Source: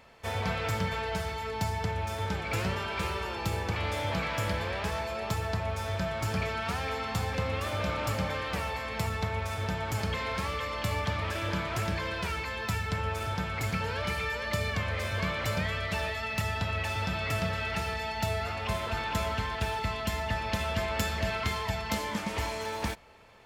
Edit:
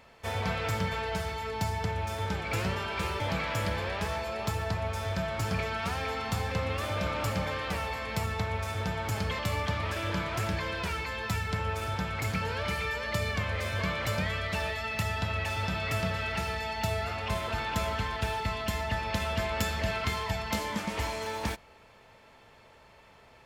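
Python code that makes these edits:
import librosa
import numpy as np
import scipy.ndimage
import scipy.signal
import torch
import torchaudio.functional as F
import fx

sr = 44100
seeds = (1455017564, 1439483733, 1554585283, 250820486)

y = fx.edit(x, sr, fx.cut(start_s=3.2, length_s=0.83),
    fx.cut(start_s=10.22, length_s=0.56), tone=tone)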